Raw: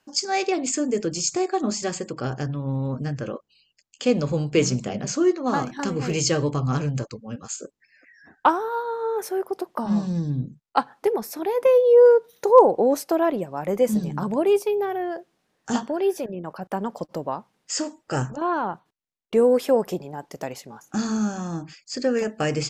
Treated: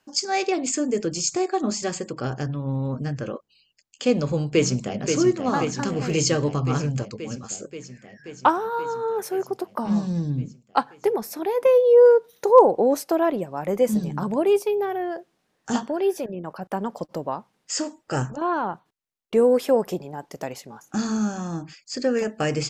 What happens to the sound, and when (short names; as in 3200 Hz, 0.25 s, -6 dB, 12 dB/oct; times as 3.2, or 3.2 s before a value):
4.48–4.99 echo throw 0.53 s, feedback 75%, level -5.5 dB